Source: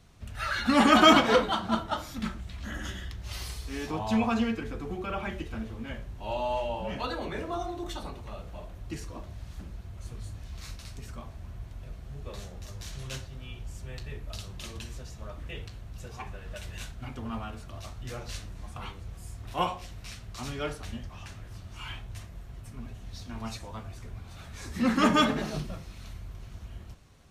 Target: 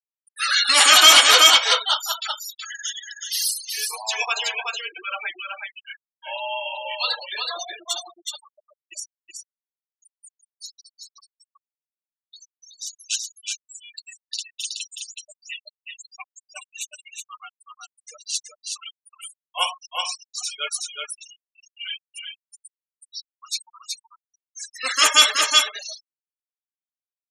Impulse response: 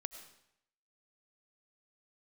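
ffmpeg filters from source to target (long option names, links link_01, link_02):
-filter_complex "[0:a]highpass=frequency=350:width=0.5412,highpass=frequency=350:width=1.3066,aderivative,afftfilt=real='re*gte(hypot(re,im),0.00708)':imag='im*gte(hypot(re,im),0.00708)':win_size=1024:overlap=0.75,asplit=2[link_01][link_02];[link_02]aecho=0:1:373:0.631[link_03];[link_01][link_03]amix=inputs=2:normalize=0,apsyclip=27.5dB,adynamicequalizer=threshold=0.0398:dfrequency=1900:dqfactor=0.7:tfrequency=1900:tqfactor=0.7:attack=5:release=100:ratio=0.375:range=2.5:mode=boostabove:tftype=highshelf,volume=-8dB"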